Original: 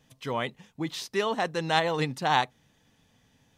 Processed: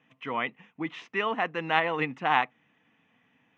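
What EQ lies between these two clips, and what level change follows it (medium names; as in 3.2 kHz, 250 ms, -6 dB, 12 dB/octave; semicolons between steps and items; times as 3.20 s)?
distance through air 130 m; cabinet simulation 290–7300 Hz, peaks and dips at 390 Hz -8 dB, 570 Hz -10 dB, 860 Hz -5 dB, 1.6 kHz -6 dB, 2.3 kHz -5 dB, 4.7 kHz -6 dB; resonant high shelf 3.2 kHz -10 dB, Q 3; +4.5 dB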